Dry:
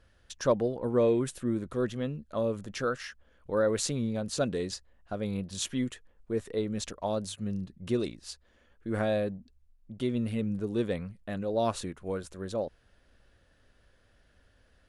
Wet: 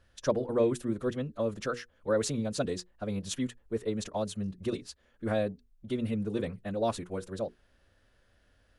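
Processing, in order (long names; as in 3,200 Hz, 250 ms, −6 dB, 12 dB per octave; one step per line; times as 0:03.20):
mains-hum notches 60/120/180/240/300/360/420/480 Hz
phase-vocoder stretch with locked phases 0.59×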